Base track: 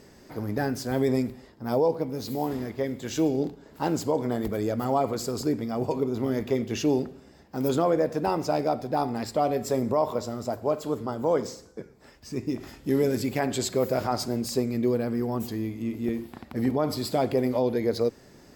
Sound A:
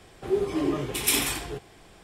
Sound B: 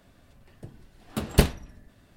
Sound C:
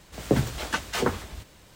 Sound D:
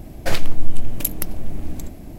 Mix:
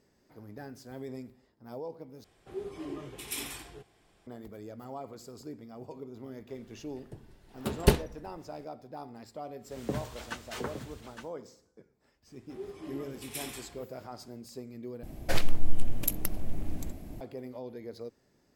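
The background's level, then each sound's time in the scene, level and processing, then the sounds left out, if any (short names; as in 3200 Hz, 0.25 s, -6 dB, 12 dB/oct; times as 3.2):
base track -17 dB
2.24 replace with A -13.5 dB
6.49 add B -4 dB + small resonant body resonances 400/890 Hz, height 7 dB
9.58 add C -11.5 dB, fades 0.10 s + echo 0.863 s -9 dB
12.27 add A -16.5 dB
15.03 replace with D -6.5 dB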